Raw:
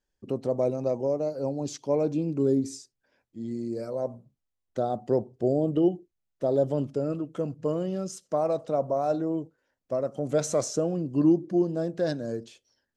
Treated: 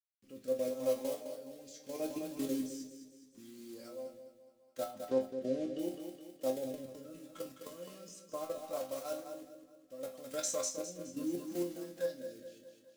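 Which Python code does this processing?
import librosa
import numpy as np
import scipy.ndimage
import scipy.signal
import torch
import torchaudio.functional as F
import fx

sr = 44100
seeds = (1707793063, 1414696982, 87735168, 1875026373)

y = fx.block_float(x, sr, bits=5)
y = fx.tilt_shelf(y, sr, db=-6.5, hz=1100.0)
y = y + 0.58 * np.pad(y, (int(3.7 * sr / 1000.0), 0))[:len(y)]
y = fx.level_steps(y, sr, step_db=14)
y = fx.quant_dither(y, sr, seeds[0], bits=10, dither='none')
y = fx.air_absorb(y, sr, metres=110.0, at=(4.91, 5.79))
y = fx.resonator_bank(y, sr, root=41, chord='minor', decay_s=0.31)
y = fx.echo_feedback(y, sr, ms=209, feedback_pct=44, wet_db=-8.0)
y = fx.rotary(y, sr, hz=0.75)
y = y * 10.0 ** (7.0 / 20.0)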